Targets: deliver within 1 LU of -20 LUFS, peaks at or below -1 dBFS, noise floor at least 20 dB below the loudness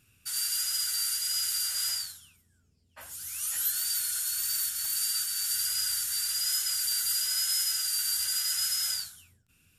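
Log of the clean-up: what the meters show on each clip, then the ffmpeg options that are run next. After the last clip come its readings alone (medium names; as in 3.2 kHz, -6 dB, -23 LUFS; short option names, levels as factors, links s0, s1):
loudness -27.0 LUFS; peak level -16.5 dBFS; loudness target -20.0 LUFS
-> -af "volume=2.24"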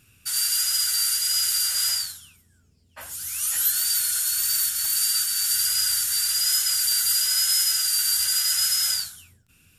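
loudness -20.0 LUFS; peak level -9.5 dBFS; noise floor -61 dBFS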